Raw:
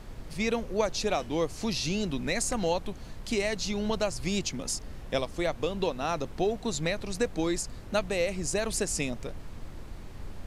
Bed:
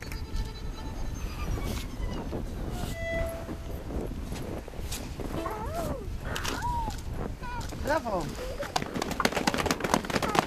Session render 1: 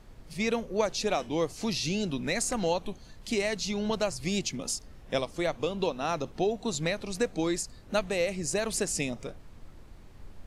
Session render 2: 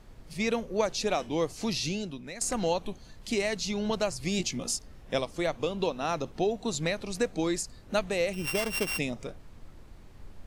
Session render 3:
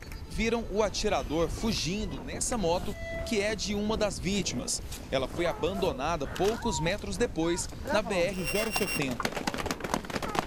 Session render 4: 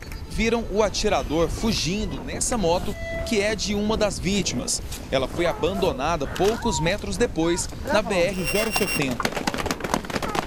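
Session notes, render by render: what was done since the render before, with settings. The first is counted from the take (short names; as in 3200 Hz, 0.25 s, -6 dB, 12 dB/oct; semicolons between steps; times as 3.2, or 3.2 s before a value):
noise print and reduce 8 dB
1.84–2.41 fade out quadratic, to -12 dB; 4.37–4.77 doubler 17 ms -5 dB; 8.33–8.99 sample sorter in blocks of 16 samples
add bed -5 dB
gain +6.5 dB; limiter -3 dBFS, peak gain reduction 3 dB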